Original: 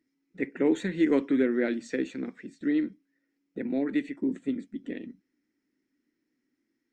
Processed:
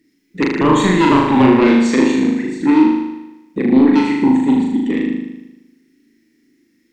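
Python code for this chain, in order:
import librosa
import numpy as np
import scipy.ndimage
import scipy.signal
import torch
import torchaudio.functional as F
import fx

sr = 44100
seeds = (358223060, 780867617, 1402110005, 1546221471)

y = fx.band_shelf(x, sr, hz=900.0, db=-10.0, octaves=1.7)
y = fx.fold_sine(y, sr, drive_db=9, ceiling_db=-13.5)
y = fx.room_flutter(y, sr, wall_m=6.6, rt60_s=1.0)
y = F.gain(torch.from_numpy(y), 3.5).numpy()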